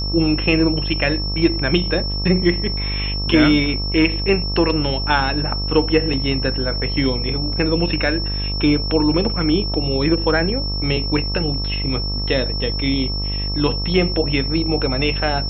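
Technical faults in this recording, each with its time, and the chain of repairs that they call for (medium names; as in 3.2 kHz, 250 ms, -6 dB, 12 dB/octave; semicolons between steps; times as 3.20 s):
buzz 50 Hz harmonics 26 -24 dBFS
whine 5.4 kHz -25 dBFS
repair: band-stop 5.4 kHz, Q 30; de-hum 50 Hz, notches 26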